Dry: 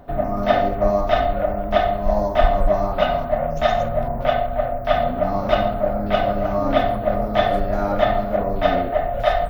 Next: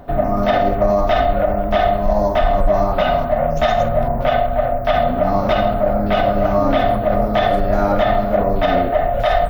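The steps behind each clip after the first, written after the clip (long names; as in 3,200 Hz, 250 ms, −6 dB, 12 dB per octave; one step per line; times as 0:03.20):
brickwall limiter −11.5 dBFS, peak gain reduction 9 dB
level +5.5 dB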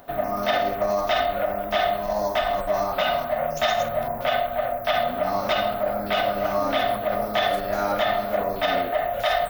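spectral tilt +3.5 dB per octave
level −5 dB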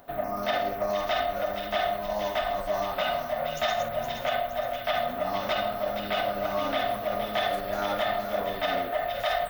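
delay with a high-pass on its return 468 ms, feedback 45%, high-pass 1,700 Hz, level −7 dB
level −5 dB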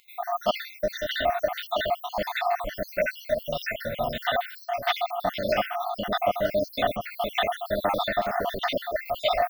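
time-frequency cells dropped at random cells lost 68%
level +6.5 dB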